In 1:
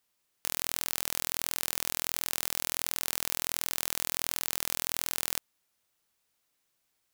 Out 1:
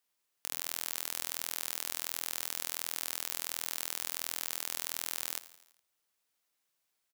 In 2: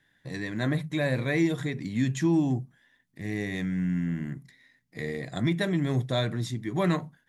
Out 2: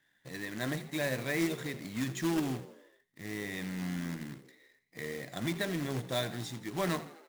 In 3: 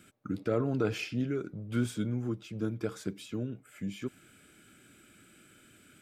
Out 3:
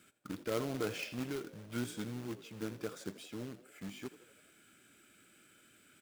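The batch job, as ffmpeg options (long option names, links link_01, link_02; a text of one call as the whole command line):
ffmpeg -i in.wav -filter_complex "[0:a]lowshelf=frequency=220:gain=-9,acrusher=bits=2:mode=log:mix=0:aa=0.000001,asplit=6[link_01][link_02][link_03][link_04][link_05][link_06];[link_02]adelay=83,afreqshift=55,volume=-16.5dB[link_07];[link_03]adelay=166,afreqshift=110,volume=-21.2dB[link_08];[link_04]adelay=249,afreqshift=165,volume=-26dB[link_09];[link_05]adelay=332,afreqshift=220,volume=-30.7dB[link_10];[link_06]adelay=415,afreqshift=275,volume=-35.4dB[link_11];[link_01][link_07][link_08][link_09][link_10][link_11]amix=inputs=6:normalize=0,volume=-4.5dB" out.wav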